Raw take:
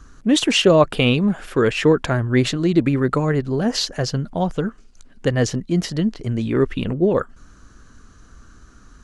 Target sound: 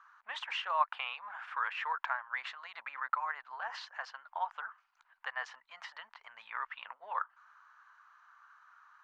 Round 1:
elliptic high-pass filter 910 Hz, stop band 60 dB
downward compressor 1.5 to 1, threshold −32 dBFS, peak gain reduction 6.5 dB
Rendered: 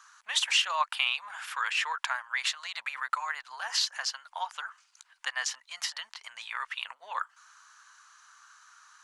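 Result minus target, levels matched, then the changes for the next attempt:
1,000 Hz band −6.0 dB
add after downward compressor: low-pass filter 1,400 Hz 12 dB per octave

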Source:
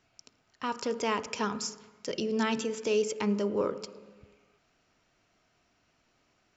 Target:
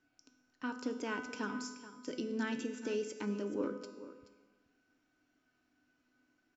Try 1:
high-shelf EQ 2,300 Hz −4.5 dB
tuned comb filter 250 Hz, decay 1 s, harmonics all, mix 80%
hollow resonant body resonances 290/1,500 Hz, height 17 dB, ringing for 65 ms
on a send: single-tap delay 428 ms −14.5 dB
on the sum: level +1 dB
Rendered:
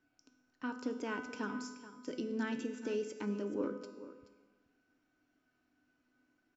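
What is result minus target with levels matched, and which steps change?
4,000 Hz band −3.0 dB
remove: high-shelf EQ 2,300 Hz −4.5 dB

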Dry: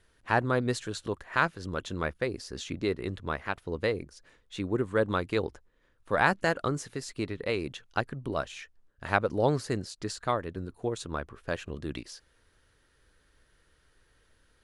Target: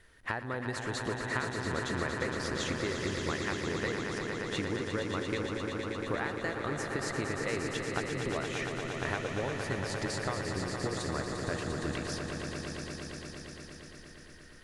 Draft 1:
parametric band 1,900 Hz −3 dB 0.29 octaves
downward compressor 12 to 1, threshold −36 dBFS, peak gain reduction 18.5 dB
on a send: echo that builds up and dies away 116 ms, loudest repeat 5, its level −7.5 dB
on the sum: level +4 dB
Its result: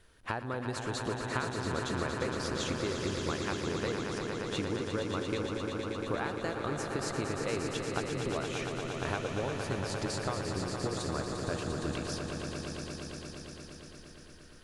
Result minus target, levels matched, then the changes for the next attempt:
2,000 Hz band −3.5 dB
change: parametric band 1,900 Hz +8 dB 0.29 octaves

